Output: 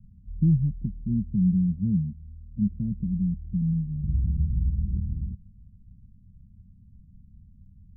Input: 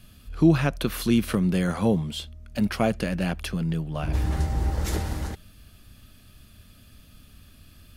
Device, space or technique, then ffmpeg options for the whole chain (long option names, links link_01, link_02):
the neighbour's flat through the wall: -af "lowpass=frequency=170:width=0.5412,lowpass=frequency=170:width=1.3066,equalizer=frequency=200:width_type=o:width=0.63:gain=8"